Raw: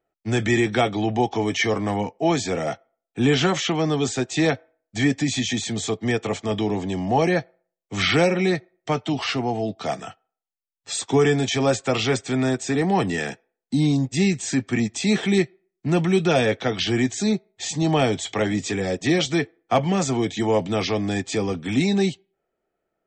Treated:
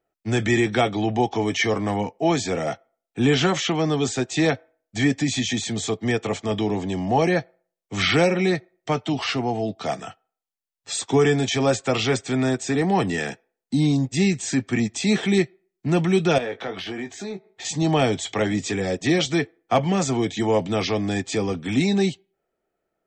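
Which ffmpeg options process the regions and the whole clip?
-filter_complex "[0:a]asettb=1/sr,asplit=3[a][b][c];[a]atrim=end=16.384[d];[b]atrim=start=16.38:end=17.65,asetpts=PTS-STARTPTS,afade=t=in:d=0.004:c=qsin,afade=t=out:st=1.266:d=0.004:c=qsin,acompressor=threshold=-39dB:ratio=2.5:attack=3.2:release=140:knee=1:detection=peak,asplit=2[e][f];[f]highpass=f=720:p=1,volume=18dB,asoftclip=type=tanh:threshold=-12dB[g];[e][g]amix=inputs=2:normalize=0,lowpass=f=1.2k:p=1,volume=-6dB,asplit=2[h][i];[i]adelay=21,volume=-8.5dB[j];[h][j]amix=inputs=2:normalize=0,atrim=end_sample=56007[k];[c]atrim=start=17.646[l];[d][k]acrossfade=d=0.004:c1=hsin:c2=qsin[m];[m][l]acrossfade=d=0.004:c1=qsin:c2=hsin"

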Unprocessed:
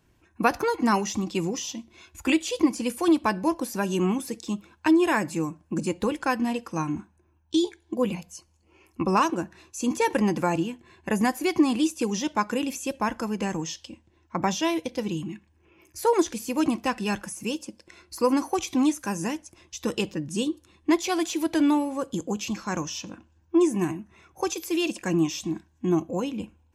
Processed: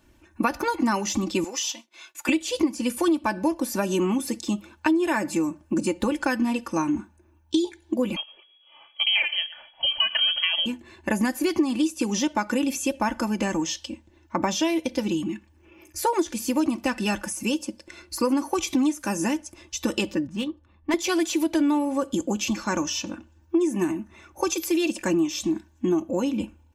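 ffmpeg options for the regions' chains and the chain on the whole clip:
-filter_complex "[0:a]asettb=1/sr,asplit=3[a][b][c];[a]atrim=end=1.444[d];[b]atrim=start=1.44:end=2.29,asetpts=PTS-STARTPTS,afade=t=in:d=0.004:c=qsin,afade=t=out:st=0.846:d=0.004:c=qsin,highpass=730,agate=range=-33dB:threshold=-59dB:ratio=3:release=100:detection=peak[e];[c]atrim=start=2.286[f];[d][e]acrossfade=d=0.004:c1=hsin:c2=qsin[g];[g][f]acrossfade=d=0.004:c1=qsin:c2=hsin,asettb=1/sr,asplit=3[h][i][j];[h]atrim=end=8.164[k];[i]atrim=start=8.16:end=10.66,asetpts=PTS-STARTPTS,afade=t=in:d=0.004:c=qsin,afade=t=out:st=2.496:d=0.004:c=qsin,aecho=1:1:115:0.0944,atrim=end_sample=110250,lowpass=f=2.9k:t=q:w=0.5098,lowpass=f=2.9k:t=q:w=0.6013,lowpass=f=2.9k:t=q:w=0.9,lowpass=f=2.9k:t=q:w=2.563,afreqshift=-3400[l];[j]atrim=start=10.656[m];[k][l]acrossfade=d=0.004:c1=hsin:c2=qsin[n];[n][m]acrossfade=d=0.004:c1=qsin:c2=hsin,asettb=1/sr,asplit=3[o][p][q];[o]atrim=end=20.274[r];[p]atrim=start=20.27:end=20.94,asetpts=PTS-STARTPTS,afade=t=in:d=0.004:c=qsin,afade=t=out:st=0.666:d=0.004:c=qsin,equalizer=f=350:t=o:w=1.1:g=-14,adynamicsmooth=sensitivity=3:basefreq=1.3k[s];[q]atrim=start=20.936[t];[r][s]acrossfade=d=0.004:c1=hsin:c2=qsin[u];[u][t]acrossfade=d=0.004:c1=qsin:c2=hsin,aecho=1:1:3.4:0.62,acompressor=threshold=-25dB:ratio=4,volume=4.5dB"

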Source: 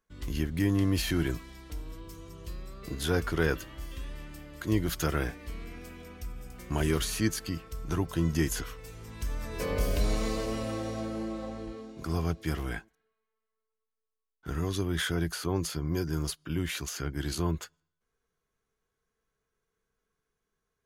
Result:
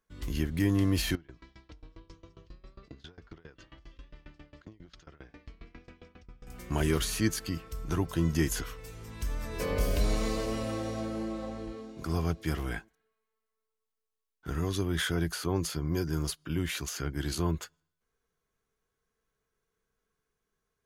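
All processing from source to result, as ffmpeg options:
-filter_complex "[0:a]asettb=1/sr,asplit=3[a][b][c];[a]atrim=end=1.154[d];[b]atrim=start=1.15:end=6.47,asetpts=PTS-STARTPTS,afade=t=in:d=0.004:c=qsin,afade=t=out:st=5.316:d=0.004:c=qsin,acompressor=threshold=-38dB:ratio=16:attack=3.2:release=140:knee=1:detection=peak,lowpass=f=5.4k:w=0.5412,lowpass=f=5.4k:w=1.3066,aeval=exprs='val(0)*pow(10,-24*if(lt(mod(7.4*n/s,1),2*abs(7.4)/1000),1-mod(7.4*n/s,1)/(2*abs(7.4)/1000),(mod(7.4*n/s,1)-2*abs(7.4)/1000)/(1-2*abs(7.4)/1000))/20)':c=same[e];[c]atrim=start=6.466[f];[d][e]acrossfade=d=0.004:c1=hsin:c2=qsin[g];[g][f]acrossfade=d=0.004:c1=qsin:c2=hsin"

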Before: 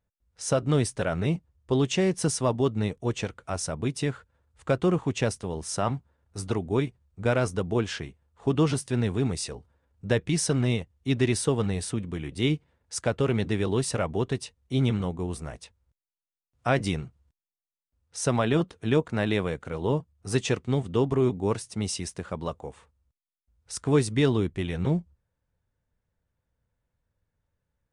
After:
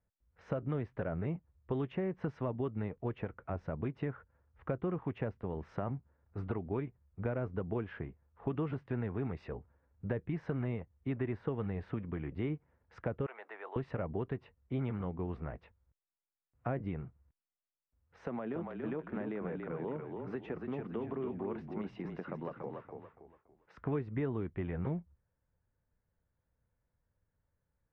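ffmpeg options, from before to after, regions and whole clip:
-filter_complex "[0:a]asettb=1/sr,asplit=3[a][b][c];[a]atrim=end=13.264[d];[b]atrim=start=13.26:end=13.76,asetpts=PTS-STARTPTS,afade=t=in:d=0.004:c=qsin,afade=t=out:st=0.496:d=0.004:c=qsin,highpass=f=700:w=0.5412,highpass=f=700:w=1.3066,bandreject=f=3.3k:w=26[e];[c]atrim=start=13.756[f];[d][e]acrossfade=d=0.004:c1=hsin:c2=qsin[g];[g][f]acrossfade=d=0.004:c1=qsin:c2=hsin,asettb=1/sr,asplit=3[h][i][j];[h]atrim=end=18.254[k];[i]atrim=start=18.25:end=23.78,asetpts=PTS-STARTPTS,afade=t=in:d=0.004:c=qsin,afade=t=out:st=5.526:d=0.004:c=qsin,highpass=f=170:w=0.5412,highpass=f=170:w=1.3066,acompressor=threshold=-32dB:ratio=3:attack=3.2:release=140:knee=1:detection=peak,asplit=5[l][m][n][o][p];[m]adelay=284,afreqshift=-30,volume=-5.5dB[q];[n]adelay=568,afreqshift=-60,volume=-15.1dB[r];[o]adelay=852,afreqshift=-90,volume=-24.8dB[s];[p]adelay=1136,afreqshift=-120,volume=-34.4dB[t];[l][q][r][s][t]amix=inputs=5:normalize=0,atrim=end_sample=243873[u];[j]atrim=start=23.776[v];[k][u]acrossfade=d=0.004:c1=hsin:c2=qsin[w];[w][v]acrossfade=d=0.004:c1=qsin:c2=hsin,lowpass=f=2.1k:w=0.5412,lowpass=f=2.1k:w=1.3066,acrossover=split=620|1600[x][y][z];[x]acompressor=threshold=-32dB:ratio=4[aa];[y]acompressor=threshold=-45dB:ratio=4[ab];[z]acompressor=threshold=-55dB:ratio=4[ac];[aa][ab][ac]amix=inputs=3:normalize=0,volume=-2.5dB"

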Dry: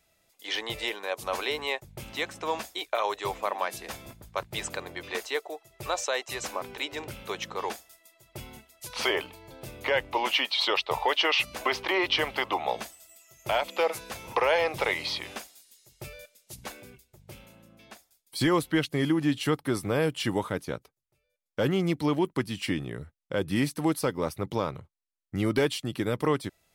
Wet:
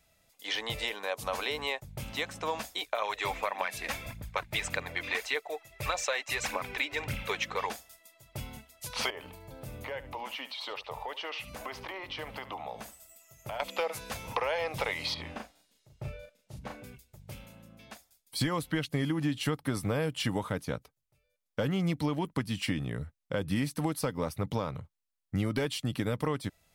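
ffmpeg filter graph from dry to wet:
-filter_complex "[0:a]asettb=1/sr,asplit=3[a][b][c];[a]atrim=end=3.024[d];[b]atrim=start=3.02:end=7.67,asetpts=PTS-STARTPTS,afade=t=in:d=0.004:c=qsin,afade=t=out:st=4.646:d=0.004:c=qsin,equalizer=f=2.2k:t=o:w=1.1:g=8.5,aphaser=in_gain=1:out_gain=1:delay=3.8:decay=0.43:speed=1.7:type=triangular,bandreject=f=3k:w=26[e];[c]atrim=start=7.666[f];[d][e]acrossfade=d=0.004:c1=hsin:c2=qsin[g];[g][f]acrossfade=d=0.004:c1=qsin:c2=hsin,asettb=1/sr,asplit=3[h][i][j];[h]atrim=end=9.104[k];[i]atrim=start=9.1:end=13.6,asetpts=PTS-STARTPTS,afade=t=in:d=0.004:c=qsin,afade=t=out:st=4.496:d=0.004:c=qsin,equalizer=f=3.8k:t=o:w=2.2:g=-5.5,acompressor=threshold=-40dB:ratio=2.5:attack=3.2:release=140:knee=1:detection=peak,aecho=1:1:72:0.178,atrim=end_sample=198450[l];[j]atrim=start=13.596[m];[k][l]acrossfade=d=0.004:c1=hsin:c2=qsin[n];[n][m]acrossfade=d=0.004:c1=qsin:c2=hsin,asettb=1/sr,asplit=3[o][p][q];[o]atrim=end=15.144[r];[p]atrim=start=15.14:end=16.84,asetpts=PTS-STARTPTS,afade=t=in:d=0.004:c=qsin,afade=t=out:st=1.696:d=0.004:c=qsin,lowpass=f=1.1k:p=1,asplit=2[s][t];[t]adelay=37,volume=-3.5dB[u];[s][u]amix=inputs=2:normalize=0,atrim=end_sample=74970[v];[q]atrim=start=16.836[w];[r][v]acrossfade=d=0.004:c1=hsin:c2=qsin[x];[x][w]acrossfade=d=0.004:c1=qsin:c2=hsin,equalizer=f=360:t=o:w=0.26:g=-10.5,acompressor=threshold=-28dB:ratio=6,lowshelf=f=210:g=5"

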